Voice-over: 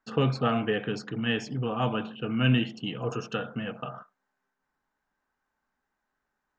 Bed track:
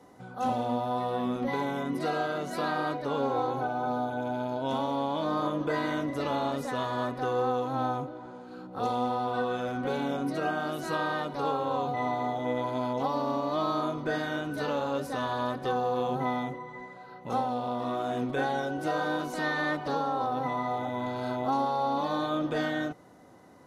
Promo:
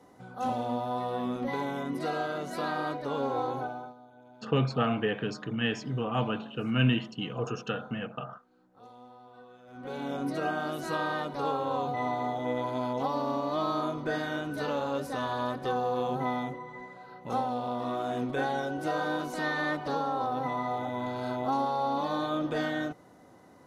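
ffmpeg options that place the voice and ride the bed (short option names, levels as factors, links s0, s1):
-filter_complex "[0:a]adelay=4350,volume=0.841[s0];[1:a]volume=9.44,afade=t=out:st=3.56:d=0.38:silence=0.0944061,afade=t=in:st=9.66:d=0.61:silence=0.0841395[s1];[s0][s1]amix=inputs=2:normalize=0"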